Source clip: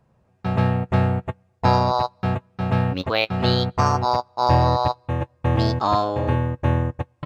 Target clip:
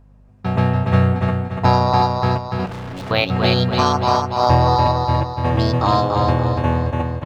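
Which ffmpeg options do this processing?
ffmpeg -i in.wav -filter_complex "[0:a]aeval=exprs='val(0)+0.00316*(sin(2*PI*50*n/s)+sin(2*PI*2*50*n/s)/2+sin(2*PI*3*50*n/s)/3+sin(2*PI*4*50*n/s)/4+sin(2*PI*5*50*n/s)/5)':channel_layout=same,asplit=2[link_01][link_02];[link_02]aecho=0:1:289|578|867|1156|1445:0.631|0.271|0.117|0.0502|0.0216[link_03];[link_01][link_03]amix=inputs=2:normalize=0,asettb=1/sr,asplit=3[link_04][link_05][link_06];[link_04]atrim=end=2.664[link_07];[link_05]atrim=start=2.66:end=3.11,asetpts=PTS-STARTPTS,afade=type=in:duration=0.004:curve=qsin,afade=type=out:start_time=0.446:duration=0.004:curve=qsin,volume=31dB,asoftclip=hard,volume=-31dB[link_08];[link_06]atrim=start=3.106[link_09];[link_07][link_08]acrossfade=duration=0.004:curve1=hsin:curve2=qsin[link_10];[link_10][link_09]acrossfade=duration=0.004:curve1=qsin:curve2=hsin,volume=2.5dB" out.wav

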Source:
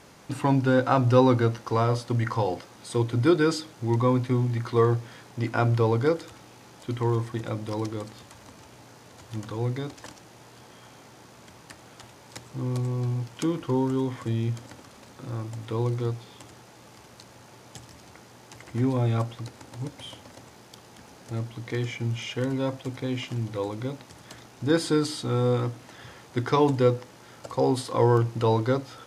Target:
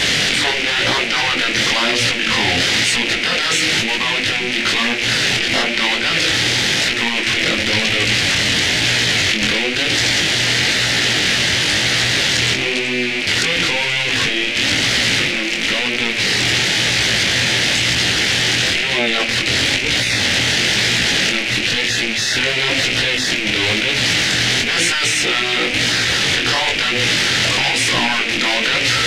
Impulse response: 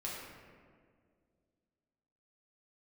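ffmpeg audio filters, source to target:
-filter_complex "[0:a]aeval=exprs='val(0)+0.5*0.0501*sgn(val(0))':channel_layout=same,lowpass=5800,highshelf=frequency=1600:width_type=q:width=3:gain=14,afftfilt=real='re*lt(hypot(re,im),0.251)':imag='im*lt(hypot(re,im),0.251)':win_size=1024:overlap=0.75,acrossover=split=3400[link_01][link_02];[link_01]acontrast=68[link_03];[link_03][link_02]amix=inputs=2:normalize=0,flanger=delay=16.5:depth=7.6:speed=1,volume=6dB"

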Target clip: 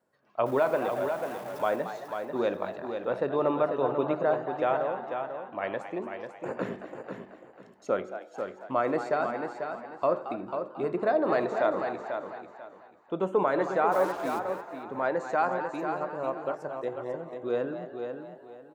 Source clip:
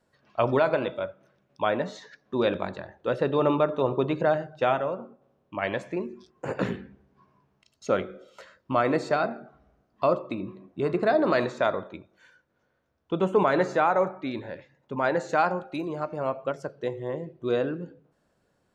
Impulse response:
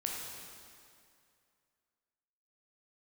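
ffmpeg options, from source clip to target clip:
-filter_complex "[0:a]asettb=1/sr,asplit=3[link_01][link_02][link_03];[link_01]atrim=end=0.464[link_04];[link_02]atrim=start=0.46:end=1.76,asetpts=PTS-STARTPTS,afade=type=in:duration=0.004:curve=qsin,afade=type=out:start_time=1.296:duration=0.004:curve=qsin,aeval=exprs='val(0)+0.5*0.0178*sgn(val(0))':channel_layout=same[link_05];[link_03]atrim=start=1.756[link_06];[link_04][link_05]acrossfade=duration=0.004:curve1=hsin:curve2=qsin[link_07];[link_07][link_06]acrossfade=duration=0.004:curve1=qsin:curve2=hsin,highpass=frequency=410:poles=1,equalizer=frequency=4100:width_type=o:width=2.5:gain=-10.5,asplit=2[link_08][link_09];[link_09]aecho=0:1:493|986|1479:0.447|0.112|0.0279[link_10];[link_08][link_10]amix=inputs=2:normalize=0,asplit=3[link_11][link_12][link_13];[link_11]afade=type=out:start_time=13.91:duration=0.02[link_14];[link_12]acrusher=bits=6:mix=0:aa=0.5,afade=type=in:start_time=13.91:duration=0.02,afade=type=out:start_time=14.38:duration=0.02[link_15];[link_13]afade=type=in:start_time=14.38:duration=0.02[link_16];[link_14][link_15][link_16]amix=inputs=3:normalize=0,asplit=2[link_17][link_18];[link_18]asplit=4[link_19][link_20][link_21][link_22];[link_19]adelay=224,afreqshift=120,volume=-11.5dB[link_23];[link_20]adelay=448,afreqshift=240,volume=-20.9dB[link_24];[link_21]adelay=672,afreqshift=360,volume=-30.2dB[link_25];[link_22]adelay=896,afreqshift=480,volume=-39.6dB[link_26];[link_23][link_24][link_25][link_26]amix=inputs=4:normalize=0[link_27];[link_17][link_27]amix=inputs=2:normalize=0"

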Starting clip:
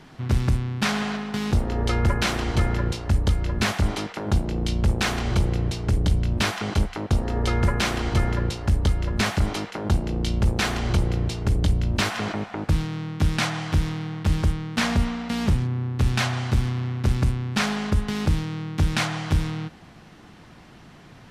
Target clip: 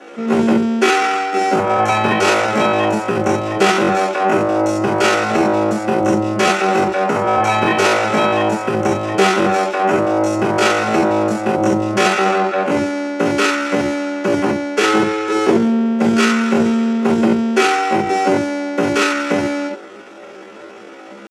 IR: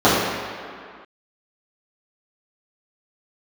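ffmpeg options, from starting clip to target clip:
-filter_complex "[0:a]highpass=150,lowpass=4500[link_01];[1:a]atrim=start_sample=2205,atrim=end_sample=4410[link_02];[link_01][link_02]afir=irnorm=-1:irlink=0,asetrate=80880,aresample=44100,atempo=0.545254,volume=-15dB"

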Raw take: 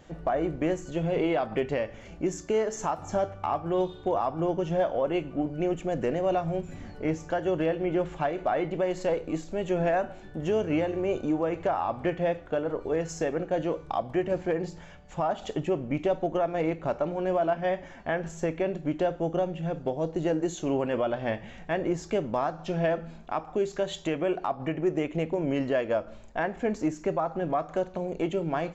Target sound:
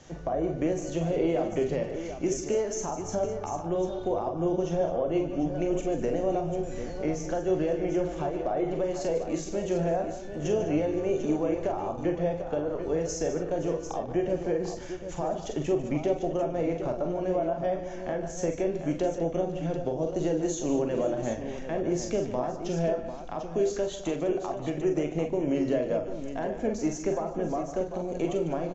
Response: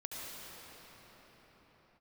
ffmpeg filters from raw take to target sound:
-filter_complex "[0:a]asubboost=boost=2.5:cutoff=54,acrossover=split=110|680[link_01][link_02][link_03];[link_01]alimiter=level_in=12.5dB:limit=-24dB:level=0:latency=1,volume=-12.5dB[link_04];[link_03]acompressor=threshold=-44dB:ratio=6[link_05];[link_04][link_02][link_05]amix=inputs=3:normalize=0,lowpass=frequency=6200:width_type=q:width=4.1,asplit=2[link_06][link_07];[link_07]aecho=0:1:40|48|148|205|518|745:0.376|0.376|0.237|0.2|0.112|0.335[link_08];[link_06][link_08]amix=inputs=2:normalize=0" -ar 44100 -c:a wmav2 -b:a 128k

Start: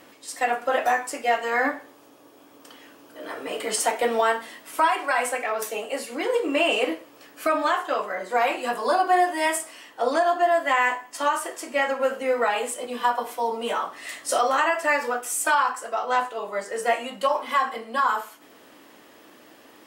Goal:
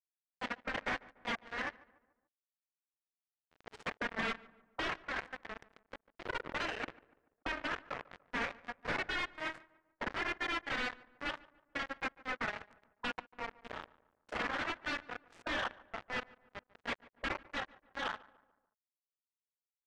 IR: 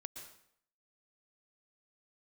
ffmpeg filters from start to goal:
-filter_complex "[0:a]bandreject=frequency=50:width_type=h:width=6,bandreject=frequency=100:width_type=h:width=6,bandreject=frequency=150:width_type=h:width=6,bandreject=frequency=200:width_type=h:width=6,bandreject=frequency=250:width_type=h:width=6,acrusher=bits=2:mix=0:aa=0.5,afftfilt=real='re*lt(hypot(re,im),0.282)':imag='im*lt(hypot(re,im),0.282)':win_size=1024:overlap=0.75,adynamicequalizer=threshold=0.0141:dfrequency=1800:dqfactor=1.9:tfrequency=1800:tqfactor=1.9:attack=5:release=100:ratio=0.375:range=2.5:mode=boostabove:tftype=bell,acompressor=threshold=-33dB:ratio=2,alimiter=limit=-20.5dB:level=0:latency=1:release=193,asoftclip=type=hard:threshold=-35dB,aemphasis=mode=reproduction:type=75fm,adynamicsmooth=sensitivity=6:basefreq=4500,asplit=2[link_01][link_02];[link_02]adelay=145,lowpass=frequency=1700:poles=1,volume=-20dB,asplit=2[link_03][link_04];[link_04]adelay=145,lowpass=frequency=1700:poles=1,volume=0.48,asplit=2[link_05][link_06];[link_06]adelay=145,lowpass=frequency=1700:poles=1,volume=0.48,asplit=2[link_07][link_08];[link_08]adelay=145,lowpass=frequency=1700:poles=1,volume=0.48[link_09];[link_01][link_03][link_05][link_07][link_09]amix=inputs=5:normalize=0,volume=5.5dB"

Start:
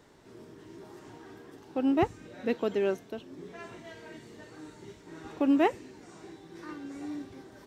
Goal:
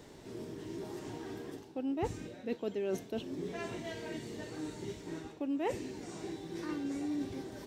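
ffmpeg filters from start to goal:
ffmpeg -i in.wav -af "equalizer=frequency=1300:width=1.2:gain=-7,areverse,acompressor=threshold=-39dB:ratio=8,areverse,volume=6.5dB" out.wav

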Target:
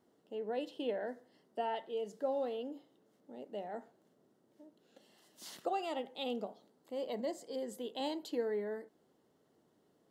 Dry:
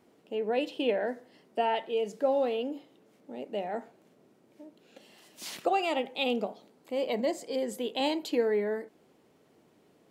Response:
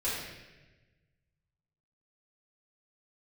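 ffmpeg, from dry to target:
-af "equalizer=frequency=2400:width_type=o:width=0.24:gain=-13.5,volume=-8.5dB"

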